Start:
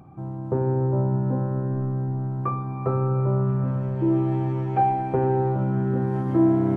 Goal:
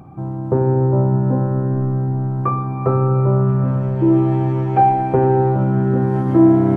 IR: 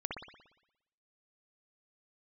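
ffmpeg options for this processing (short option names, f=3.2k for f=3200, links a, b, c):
-filter_complex "[0:a]asplit=2[a][b];[1:a]atrim=start_sample=2205,lowpass=2k[c];[b][c]afir=irnorm=-1:irlink=0,volume=-16dB[d];[a][d]amix=inputs=2:normalize=0,volume=6.5dB"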